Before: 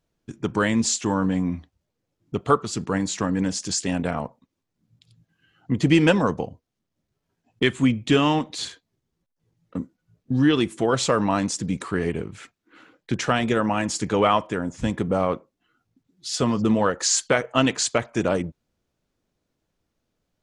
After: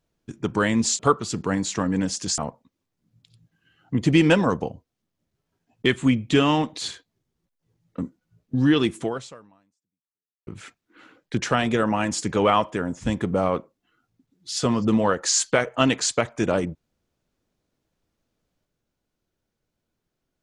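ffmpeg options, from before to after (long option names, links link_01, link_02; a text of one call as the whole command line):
ffmpeg -i in.wav -filter_complex "[0:a]asplit=4[link_01][link_02][link_03][link_04];[link_01]atrim=end=0.992[link_05];[link_02]atrim=start=2.418:end=3.812[link_06];[link_03]atrim=start=4.148:end=12.24,asetpts=PTS-STARTPTS,afade=type=out:start_time=6.632:duration=1.46:curve=exp[link_07];[link_04]atrim=start=12.24,asetpts=PTS-STARTPTS,afade=type=in:duration=0.004:curve=hsin[link_08];[link_05][link_06]acrossfade=duration=0.004:curve1=hsin:curve2=hsin[link_09];[link_07][link_08]concat=n=2:v=0:a=1[link_10];[link_09][link_10]acrossfade=duration=0.004:curve1=hsin:curve2=hsin" out.wav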